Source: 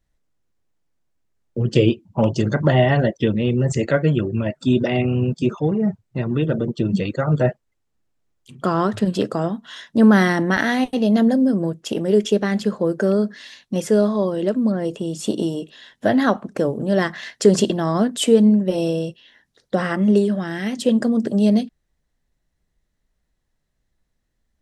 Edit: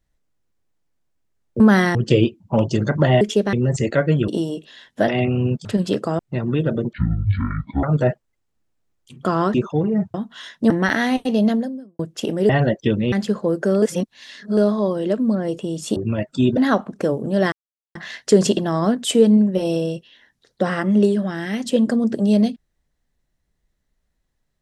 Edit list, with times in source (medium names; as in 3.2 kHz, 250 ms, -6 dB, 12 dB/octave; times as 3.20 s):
2.86–3.49 s: swap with 12.17–12.49 s
4.24–4.85 s: swap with 15.33–16.13 s
5.42–6.02 s: swap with 8.93–9.47 s
6.76–7.22 s: speed 51%
10.03–10.38 s: move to 1.60 s
11.12–11.67 s: fade out quadratic
13.19–13.94 s: reverse
17.08 s: insert silence 0.43 s